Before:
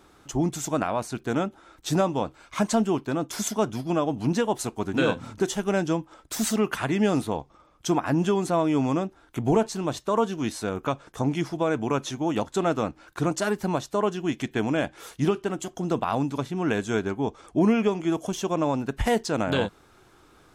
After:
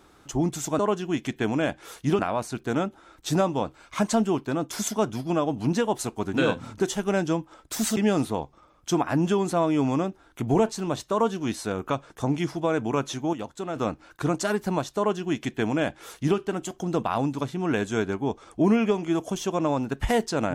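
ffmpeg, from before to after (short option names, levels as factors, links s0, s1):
-filter_complex "[0:a]asplit=6[s0][s1][s2][s3][s4][s5];[s0]atrim=end=0.792[s6];[s1]atrim=start=13.938:end=15.342[s7];[s2]atrim=start=0.788:end=6.572[s8];[s3]atrim=start=6.938:end=12.302[s9];[s4]atrim=start=12.298:end=12.732,asetpts=PTS-STARTPTS,volume=0.398[s10];[s5]atrim=start=12.728[s11];[s6][s7]acrossfade=d=0.004:c1=hsin:c2=hsin[s12];[s12][s8]acrossfade=d=0.004:c1=hsin:c2=hsin[s13];[s13][s9]acrossfade=d=0.004:c1=hsin:c2=hsin[s14];[s14][s10]acrossfade=d=0.004:c1=hsin:c2=hsin[s15];[s15][s11]acrossfade=d=0.004:c1=hsin:c2=hsin"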